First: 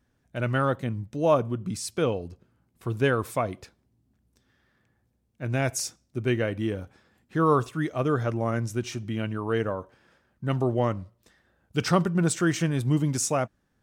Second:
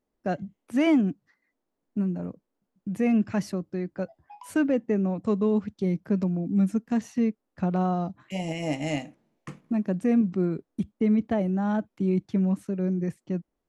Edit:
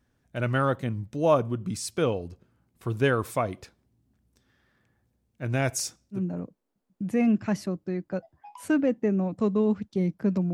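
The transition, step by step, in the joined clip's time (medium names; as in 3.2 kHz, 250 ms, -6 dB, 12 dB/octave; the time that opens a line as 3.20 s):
first
6.17 s: go over to second from 2.03 s, crossfade 0.12 s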